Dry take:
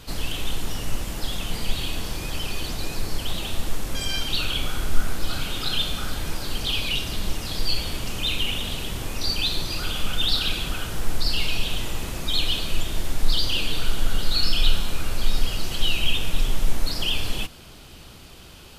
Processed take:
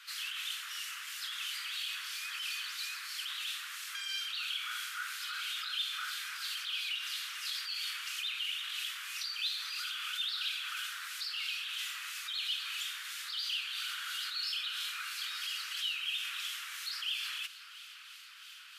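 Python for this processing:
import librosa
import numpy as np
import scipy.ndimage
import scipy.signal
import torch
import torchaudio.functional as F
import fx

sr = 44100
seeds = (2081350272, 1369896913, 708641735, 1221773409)

p1 = scipy.signal.sosfilt(scipy.signal.butter(8, 1300.0, 'highpass', fs=sr, output='sos'), x)
p2 = fx.high_shelf(p1, sr, hz=4100.0, db=-8.5)
p3 = fx.over_compress(p2, sr, threshold_db=-38.0, ratio=-0.5)
p4 = p2 + F.gain(torch.from_numpy(p3), -2.0).numpy()
p5 = 10.0 ** (-15.5 / 20.0) * np.tanh(p4 / 10.0 ** (-15.5 / 20.0))
p6 = fx.harmonic_tremolo(p5, sr, hz=3.0, depth_pct=50, crossover_hz=2300.0)
p7 = p6 + fx.echo_tape(p6, sr, ms=686, feedback_pct=71, wet_db=-16, lp_hz=6000.0, drive_db=22.0, wow_cents=11, dry=0)
y = F.gain(torch.from_numpy(p7), -4.5).numpy()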